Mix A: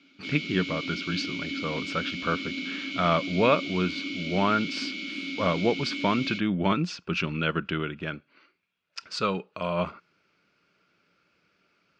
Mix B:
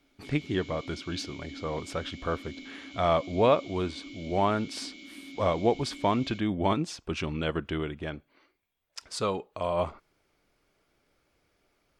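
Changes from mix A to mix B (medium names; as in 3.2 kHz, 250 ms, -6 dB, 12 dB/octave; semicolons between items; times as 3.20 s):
background -8.5 dB; master: remove cabinet simulation 120–6300 Hz, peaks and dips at 180 Hz +10 dB, 760 Hz -6 dB, 1.4 kHz +10 dB, 2.6 kHz +10 dB, 4.6 kHz +5 dB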